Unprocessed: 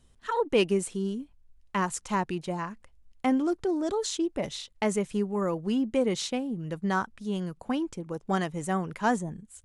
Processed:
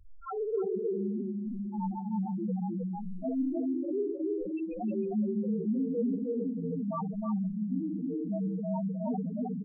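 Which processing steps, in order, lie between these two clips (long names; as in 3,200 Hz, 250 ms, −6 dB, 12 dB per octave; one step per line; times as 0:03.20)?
partials spread apart or drawn together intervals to 86%
convolution reverb RT60 1.3 s, pre-delay 4 ms, DRR 0 dB
spectral peaks only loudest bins 2
0:03.47–0:05.53: parametric band 1,400 Hz +9.5 dB 0.85 octaves
single-tap delay 313 ms −3.5 dB
envelope flattener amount 50%
level −7.5 dB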